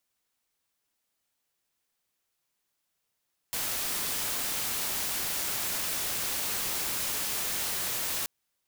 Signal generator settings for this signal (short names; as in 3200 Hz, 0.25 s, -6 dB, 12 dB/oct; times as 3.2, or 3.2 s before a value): noise white, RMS -31.5 dBFS 4.73 s